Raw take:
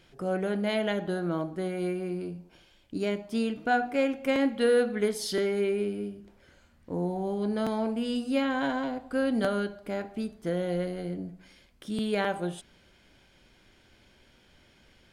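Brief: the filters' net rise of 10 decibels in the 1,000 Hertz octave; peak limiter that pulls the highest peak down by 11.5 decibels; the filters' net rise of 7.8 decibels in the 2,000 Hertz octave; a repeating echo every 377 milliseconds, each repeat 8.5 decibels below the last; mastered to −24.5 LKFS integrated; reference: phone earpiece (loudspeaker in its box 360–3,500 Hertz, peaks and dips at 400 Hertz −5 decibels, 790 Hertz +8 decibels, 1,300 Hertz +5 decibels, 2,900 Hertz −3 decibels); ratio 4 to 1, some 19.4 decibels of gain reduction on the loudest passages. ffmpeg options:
ffmpeg -i in.wav -af "equalizer=frequency=1000:width_type=o:gain=5,equalizer=frequency=2000:width_type=o:gain=6.5,acompressor=threshold=-42dB:ratio=4,alimiter=level_in=14.5dB:limit=-24dB:level=0:latency=1,volume=-14.5dB,highpass=360,equalizer=frequency=400:width_type=q:width=4:gain=-5,equalizer=frequency=790:width_type=q:width=4:gain=8,equalizer=frequency=1300:width_type=q:width=4:gain=5,equalizer=frequency=2900:width_type=q:width=4:gain=-3,lowpass=frequency=3500:width=0.5412,lowpass=frequency=3500:width=1.3066,aecho=1:1:377|754|1131|1508:0.376|0.143|0.0543|0.0206,volume=25dB" out.wav

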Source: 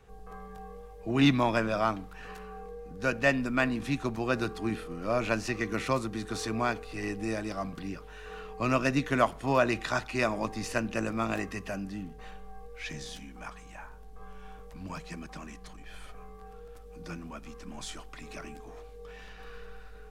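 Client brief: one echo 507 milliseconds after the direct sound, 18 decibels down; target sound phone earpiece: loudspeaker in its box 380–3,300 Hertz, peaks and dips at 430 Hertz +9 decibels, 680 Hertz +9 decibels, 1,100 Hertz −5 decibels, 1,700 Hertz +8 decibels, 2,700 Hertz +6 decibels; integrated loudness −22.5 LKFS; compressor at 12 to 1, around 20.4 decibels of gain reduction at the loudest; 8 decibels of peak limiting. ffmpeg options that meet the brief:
ffmpeg -i in.wav -af "acompressor=threshold=-39dB:ratio=12,alimiter=level_in=9.5dB:limit=-24dB:level=0:latency=1,volume=-9.5dB,highpass=380,equalizer=frequency=430:width_type=q:width=4:gain=9,equalizer=frequency=680:width_type=q:width=4:gain=9,equalizer=frequency=1100:width_type=q:width=4:gain=-5,equalizer=frequency=1700:width_type=q:width=4:gain=8,equalizer=frequency=2700:width_type=q:width=4:gain=6,lowpass=frequency=3300:width=0.5412,lowpass=frequency=3300:width=1.3066,aecho=1:1:507:0.126,volume=21dB" out.wav

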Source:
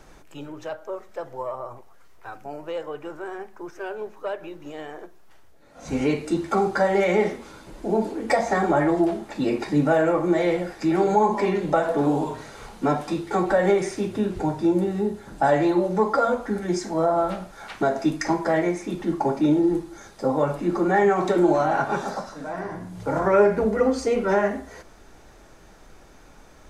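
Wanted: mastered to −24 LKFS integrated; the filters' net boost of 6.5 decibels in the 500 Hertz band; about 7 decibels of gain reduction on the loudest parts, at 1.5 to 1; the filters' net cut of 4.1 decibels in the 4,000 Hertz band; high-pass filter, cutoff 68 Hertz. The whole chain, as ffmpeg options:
ffmpeg -i in.wav -af "highpass=68,equalizer=frequency=500:width_type=o:gain=8.5,equalizer=frequency=4000:width_type=o:gain=-5.5,acompressor=threshold=-28dB:ratio=1.5,volume=0.5dB" out.wav

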